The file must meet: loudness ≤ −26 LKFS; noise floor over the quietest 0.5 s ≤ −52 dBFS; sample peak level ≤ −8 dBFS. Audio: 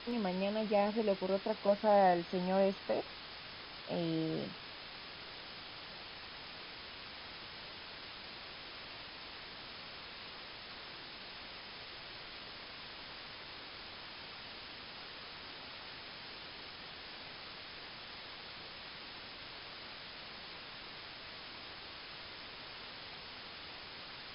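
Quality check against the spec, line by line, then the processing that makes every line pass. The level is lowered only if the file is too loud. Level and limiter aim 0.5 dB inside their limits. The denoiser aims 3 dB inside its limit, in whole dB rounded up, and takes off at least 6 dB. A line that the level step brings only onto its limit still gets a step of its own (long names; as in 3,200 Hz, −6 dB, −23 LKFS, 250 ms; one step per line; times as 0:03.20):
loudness −40.5 LKFS: in spec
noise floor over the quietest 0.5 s −49 dBFS: out of spec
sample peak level −17.5 dBFS: in spec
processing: broadband denoise 6 dB, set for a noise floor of −49 dBFS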